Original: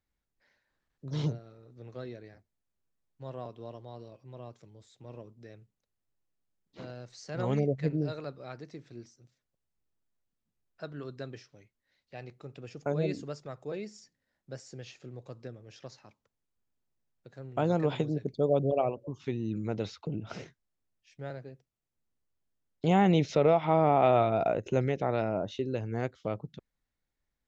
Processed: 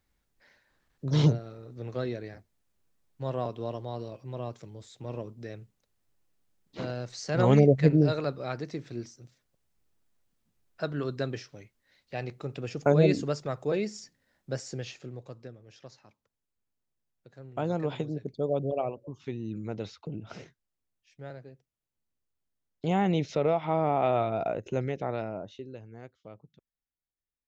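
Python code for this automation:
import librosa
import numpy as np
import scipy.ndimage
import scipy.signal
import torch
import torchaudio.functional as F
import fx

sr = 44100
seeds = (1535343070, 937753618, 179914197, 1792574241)

y = fx.gain(x, sr, db=fx.line((14.7, 9.0), (15.55, -2.5), (25.1, -2.5), (25.99, -14.0)))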